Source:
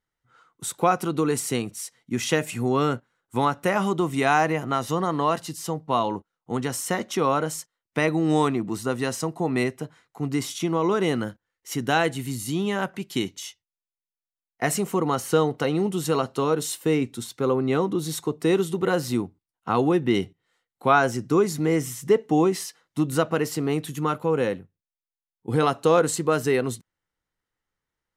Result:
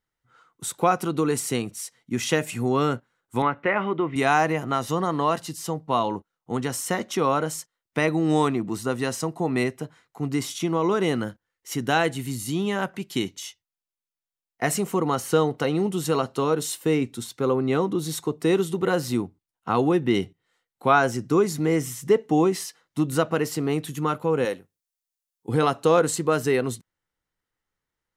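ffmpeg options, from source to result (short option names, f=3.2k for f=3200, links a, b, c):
-filter_complex "[0:a]asettb=1/sr,asplit=3[a][b][c];[a]atrim=end=3.424[d];[b]atrim=start=3.42:end=4.16,asetpts=PTS-STARTPTS,afade=t=in:d=0.004:c=qsin,afade=t=out:st=0.736:d=0.004:c=qsin,highpass=110,equalizer=f=180:t=q:w=4:g=-7,equalizer=f=750:t=q:w=4:g=-4,equalizer=f=2.1k:t=q:w=4:g=7,lowpass=f=2.8k:w=0.5412,lowpass=f=2.8k:w=1.3066[e];[c]atrim=start=4.156[f];[d][e]acrossfade=d=0.004:c1=hsin:c2=qsin[g];[g][f]acrossfade=d=0.004:c1=qsin:c2=hsin,asettb=1/sr,asplit=3[h][i][j];[h]atrim=end=24.454[k];[i]atrim=start=24.45:end=25.49,asetpts=PTS-STARTPTS,afade=t=in:d=0.004:c=qsin,afade=t=out:st=1.036:d=0.004:c=qsin,bass=f=250:g=-11,treble=f=4k:g=9[l];[j]atrim=start=25.486[m];[k][l]acrossfade=d=0.004:c1=hsin:c2=qsin[n];[n][m]acrossfade=d=0.004:c1=qsin:c2=hsin"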